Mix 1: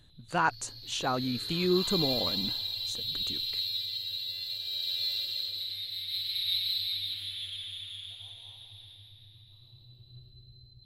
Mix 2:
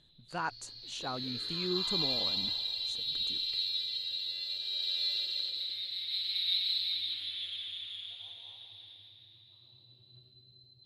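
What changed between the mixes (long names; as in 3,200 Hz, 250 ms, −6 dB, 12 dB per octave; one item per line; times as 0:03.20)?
speech −8.5 dB
background: add band-pass filter 210–5,900 Hz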